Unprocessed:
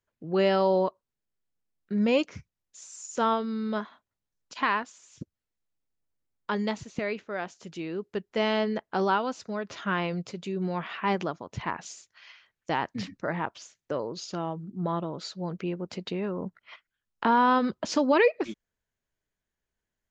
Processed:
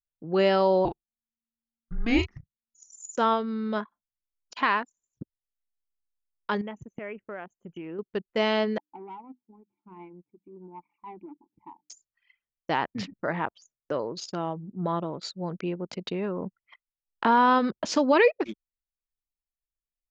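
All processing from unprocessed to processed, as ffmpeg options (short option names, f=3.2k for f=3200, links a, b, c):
-filter_complex "[0:a]asettb=1/sr,asplit=3[a][b][c];[a]atrim=end=0.854[d];[b]atrim=start=0.85:end=2.97,asetpts=PTS-STARTPTS,afade=t=in:d=0.004:c=qsin,afade=t=out:st=2.116:d=0.004:c=qsin,asplit=2[e][f];[f]adelay=35,volume=-7dB[g];[e][g]amix=inputs=2:normalize=0,atrim=end_sample=93492,afreqshift=-230[h];[c]atrim=start=2.966[i];[d][h]acrossfade=d=0.004:c1=hsin:c2=qsin[j];[j][i]acrossfade=d=0.004:c1=qsin:c2=hsin,asettb=1/sr,asplit=3[k][l][m];[k]atrim=end=6.614[n];[l]atrim=start=6.61:end=7.99,asetpts=PTS-STARTPTS,afade=t=in:d=0.004:c=qsin,afade=t=out:st=1.376:d=0.004:c=qsin,acompressor=threshold=-35dB:ratio=4:attack=3.2:release=140:knee=1:detection=peak,asuperstop=centerf=4500:order=20:qfactor=1.7[o];[m]atrim=start=7.986[p];[n][o]acrossfade=d=0.004:c1=hsin:c2=qsin[q];[q][p]acrossfade=d=0.004:c1=qsin:c2=hsin,asettb=1/sr,asplit=3[r][s][t];[r]atrim=end=8.784[u];[s]atrim=start=8.78:end=11.9,asetpts=PTS-STARTPTS,afade=t=in:d=0.004:c=qsin,afade=t=out:st=3.116:d=0.004:c=qsin,bandreject=f=50:t=h:w=6,bandreject=f=100:t=h:w=6,bandreject=f=150:t=h:w=6,bandreject=f=200:t=h:w=6,bandreject=f=250:t=h:w=6,bandreject=f=300:t=h:w=6,asoftclip=type=hard:threshold=-25.5dB,asplit=3[v][w][x];[v]bandpass=f=300:t=q:w=8,volume=0dB[y];[w]bandpass=f=870:t=q:w=8,volume=-6dB[z];[x]bandpass=f=2.24k:t=q:w=8,volume=-9dB[aa];[y][z][aa]amix=inputs=3:normalize=0[ab];[t]atrim=start=11.896[ac];[u][ab]acrossfade=d=0.004:c1=hsin:c2=qsin[ad];[ad][ac]acrossfade=d=0.004:c1=qsin:c2=hsin,anlmdn=0.251,lowshelf=f=160:g=-4.5,volume=2dB"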